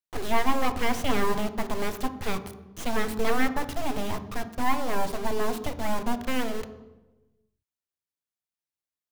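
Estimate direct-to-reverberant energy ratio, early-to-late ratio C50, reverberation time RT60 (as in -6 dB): 10.0 dB, 12.5 dB, 1.1 s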